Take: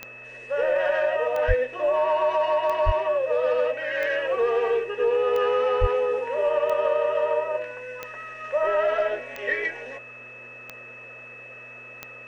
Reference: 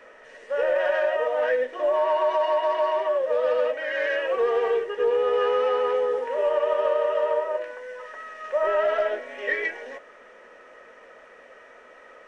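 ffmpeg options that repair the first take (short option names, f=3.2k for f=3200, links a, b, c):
-filter_complex "[0:a]adeclick=t=4,bandreject=f=121.3:t=h:w=4,bandreject=f=242.6:t=h:w=4,bandreject=f=363.9:t=h:w=4,bandreject=f=485.2:t=h:w=4,bandreject=f=606.5:t=h:w=4,bandreject=f=2.6k:w=30,asplit=3[a][b][c];[a]afade=t=out:st=1.47:d=0.02[d];[b]highpass=f=140:w=0.5412,highpass=f=140:w=1.3066,afade=t=in:st=1.47:d=0.02,afade=t=out:st=1.59:d=0.02[e];[c]afade=t=in:st=1.59:d=0.02[f];[d][e][f]amix=inputs=3:normalize=0,asplit=3[g][h][i];[g]afade=t=out:st=2.85:d=0.02[j];[h]highpass=f=140:w=0.5412,highpass=f=140:w=1.3066,afade=t=in:st=2.85:d=0.02,afade=t=out:st=2.97:d=0.02[k];[i]afade=t=in:st=2.97:d=0.02[l];[j][k][l]amix=inputs=3:normalize=0,asplit=3[m][n][o];[m]afade=t=out:st=5.8:d=0.02[p];[n]highpass=f=140:w=0.5412,highpass=f=140:w=1.3066,afade=t=in:st=5.8:d=0.02,afade=t=out:st=5.92:d=0.02[q];[o]afade=t=in:st=5.92:d=0.02[r];[p][q][r]amix=inputs=3:normalize=0"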